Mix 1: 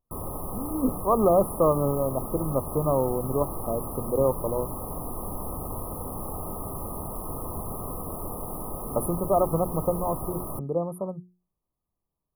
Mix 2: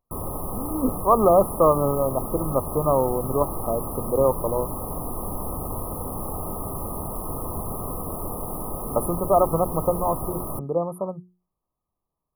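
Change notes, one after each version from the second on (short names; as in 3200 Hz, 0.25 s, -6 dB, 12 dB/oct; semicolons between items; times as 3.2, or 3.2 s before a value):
speech: add bell 1500 Hz +7 dB 2.9 oct; background +3.5 dB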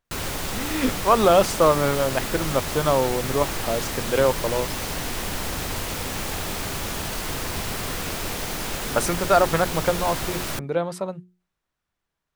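master: remove brick-wall FIR band-stop 1300–9500 Hz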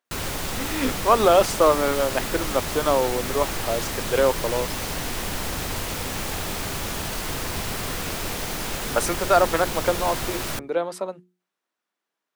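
speech: add HPF 240 Hz 24 dB/oct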